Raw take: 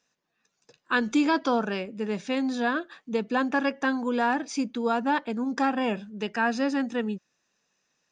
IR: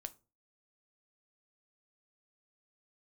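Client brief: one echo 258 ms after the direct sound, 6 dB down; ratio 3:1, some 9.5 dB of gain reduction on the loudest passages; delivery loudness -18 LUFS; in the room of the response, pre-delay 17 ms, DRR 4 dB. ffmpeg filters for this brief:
-filter_complex "[0:a]acompressor=threshold=0.0251:ratio=3,aecho=1:1:258:0.501,asplit=2[s0][s1];[1:a]atrim=start_sample=2205,adelay=17[s2];[s1][s2]afir=irnorm=-1:irlink=0,volume=1[s3];[s0][s3]amix=inputs=2:normalize=0,volume=5.31"

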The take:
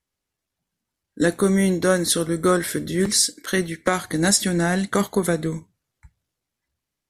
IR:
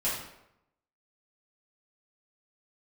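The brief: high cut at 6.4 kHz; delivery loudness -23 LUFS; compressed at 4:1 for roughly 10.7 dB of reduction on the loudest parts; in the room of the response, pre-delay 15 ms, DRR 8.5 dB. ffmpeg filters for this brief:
-filter_complex "[0:a]lowpass=6400,acompressor=threshold=0.0447:ratio=4,asplit=2[s0][s1];[1:a]atrim=start_sample=2205,adelay=15[s2];[s1][s2]afir=irnorm=-1:irlink=0,volume=0.15[s3];[s0][s3]amix=inputs=2:normalize=0,volume=2.11"

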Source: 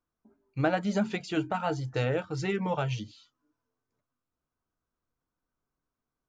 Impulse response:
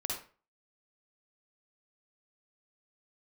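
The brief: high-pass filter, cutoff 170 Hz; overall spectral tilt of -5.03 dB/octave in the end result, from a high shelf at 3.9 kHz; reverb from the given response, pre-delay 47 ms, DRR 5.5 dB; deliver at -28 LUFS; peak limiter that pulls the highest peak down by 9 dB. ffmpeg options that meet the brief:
-filter_complex "[0:a]highpass=170,highshelf=f=3900:g=7,alimiter=limit=0.0944:level=0:latency=1,asplit=2[s0][s1];[1:a]atrim=start_sample=2205,adelay=47[s2];[s1][s2]afir=irnorm=-1:irlink=0,volume=0.398[s3];[s0][s3]amix=inputs=2:normalize=0,volume=1.58"

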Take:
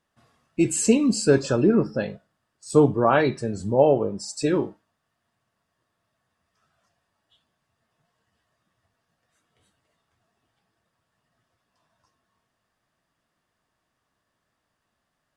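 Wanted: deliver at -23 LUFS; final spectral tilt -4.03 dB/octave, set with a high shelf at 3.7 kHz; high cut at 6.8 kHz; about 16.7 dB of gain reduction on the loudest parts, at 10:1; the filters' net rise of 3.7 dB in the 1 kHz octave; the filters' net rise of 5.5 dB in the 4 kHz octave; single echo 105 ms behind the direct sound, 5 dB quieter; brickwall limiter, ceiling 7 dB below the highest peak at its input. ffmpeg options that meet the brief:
-af "lowpass=6800,equalizer=f=1000:t=o:g=4.5,highshelf=f=3700:g=3,equalizer=f=4000:t=o:g=5.5,acompressor=threshold=0.0398:ratio=10,alimiter=limit=0.0708:level=0:latency=1,aecho=1:1:105:0.562,volume=3.16"

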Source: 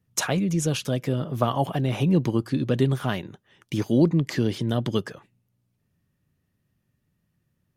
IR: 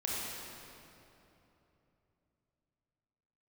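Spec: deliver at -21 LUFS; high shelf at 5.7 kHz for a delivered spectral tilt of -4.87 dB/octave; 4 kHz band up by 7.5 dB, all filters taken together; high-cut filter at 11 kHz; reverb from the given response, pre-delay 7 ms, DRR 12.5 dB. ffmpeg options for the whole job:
-filter_complex "[0:a]lowpass=11000,equalizer=f=4000:t=o:g=7.5,highshelf=f=5700:g=7,asplit=2[s0][s1];[1:a]atrim=start_sample=2205,adelay=7[s2];[s1][s2]afir=irnorm=-1:irlink=0,volume=0.133[s3];[s0][s3]amix=inputs=2:normalize=0,volume=1.33"

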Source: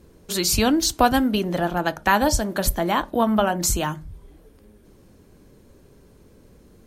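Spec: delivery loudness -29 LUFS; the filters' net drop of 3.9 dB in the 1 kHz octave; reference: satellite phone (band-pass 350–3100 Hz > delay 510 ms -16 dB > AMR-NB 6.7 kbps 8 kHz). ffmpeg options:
-af "highpass=350,lowpass=3100,equalizer=f=1000:t=o:g=-5,aecho=1:1:510:0.158,volume=0.841" -ar 8000 -c:a libopencore_amrnb -b:a 6700

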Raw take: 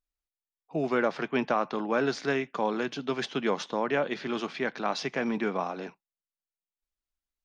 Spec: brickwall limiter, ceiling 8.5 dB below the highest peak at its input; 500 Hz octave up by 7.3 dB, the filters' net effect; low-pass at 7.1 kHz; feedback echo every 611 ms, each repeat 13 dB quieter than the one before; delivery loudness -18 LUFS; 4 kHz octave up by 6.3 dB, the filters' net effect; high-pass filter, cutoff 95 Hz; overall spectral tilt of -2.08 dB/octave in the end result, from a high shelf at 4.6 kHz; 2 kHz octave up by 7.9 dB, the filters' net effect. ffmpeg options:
-af "highpass=95,lowpass=7100,equalizer=f=500:t=o:g=8.5,equalizer=f=2000:t=o:g=9,equalizer=f=4000:t=o:g=6.5,highshelf=f=4600:g=-3,alimiter=limit=0.15:level=0:latency=1,aecho=1:1:611|1222|1833:0.224|0.0493|0.0108,volume=2.99"

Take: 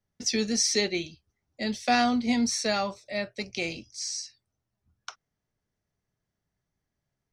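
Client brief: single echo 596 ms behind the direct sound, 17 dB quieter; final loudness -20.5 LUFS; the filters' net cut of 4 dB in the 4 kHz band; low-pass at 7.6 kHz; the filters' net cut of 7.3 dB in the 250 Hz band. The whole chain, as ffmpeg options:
-af "lowpass=7600,equalizer=f=250:t=o:g=-8,equalizer=f=4000:t=o:g=-4.5,aecho=1:1:596:0.141,volume=3.35"

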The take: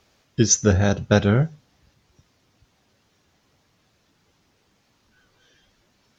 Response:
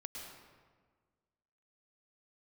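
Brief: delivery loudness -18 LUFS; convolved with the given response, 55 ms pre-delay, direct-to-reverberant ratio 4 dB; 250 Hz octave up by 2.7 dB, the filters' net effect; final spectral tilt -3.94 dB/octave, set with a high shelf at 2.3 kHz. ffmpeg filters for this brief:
-filter_complex "[0:a]equalizer=f=250:t=o:g=3.5,highshelf=f=2300:g=7,asplit=2[s0][s1];[1:a]atrim=start_sample=2205,adelay=55[s2];[s1][s2]afir=irnorm=-1:irlink=0,volume=0.841[s3];[s0][s3]amix=inputs=2:normalize=0,volume=0.75"

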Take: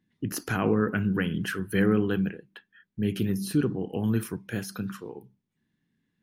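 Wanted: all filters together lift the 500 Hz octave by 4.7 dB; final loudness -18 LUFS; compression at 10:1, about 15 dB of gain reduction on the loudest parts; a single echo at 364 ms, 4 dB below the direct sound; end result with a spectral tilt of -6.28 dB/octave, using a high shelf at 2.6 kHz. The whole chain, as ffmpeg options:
-af "equalizer=f=500:t=o:g=6,highshelf=f=2600:g=-5,acompressor=threshold=0.0251:ratio=10,aecho=1:1:364:0.631,volume=8.91"

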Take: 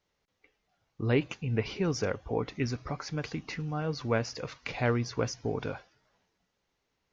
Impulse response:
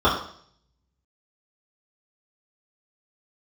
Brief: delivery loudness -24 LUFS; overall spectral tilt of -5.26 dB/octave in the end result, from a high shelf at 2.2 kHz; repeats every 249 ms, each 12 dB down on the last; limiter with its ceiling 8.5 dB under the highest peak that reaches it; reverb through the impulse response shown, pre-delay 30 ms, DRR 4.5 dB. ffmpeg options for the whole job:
-filter_complex "[0:a]highshelf=f=2200:g=4,alimiter=limit=0.0708:level=0:latency=1,aecho=1:1:249|498|747:0.251|0.0628|0.0157,asplit=2[s0][s1];[1:a]atrim=start_sample=2205,adelay=30[s2];[s1][s2]afir=irnorm=-1:irlink=0,volume=0.0531[s3];[s0][s3]amix=inputs=2:normalize=0,volume=2.82"

